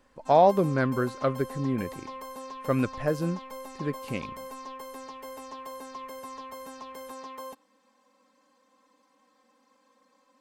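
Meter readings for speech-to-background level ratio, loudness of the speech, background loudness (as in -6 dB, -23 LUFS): 14.0 dB, -27.0 LUFS, -41.0 LUFS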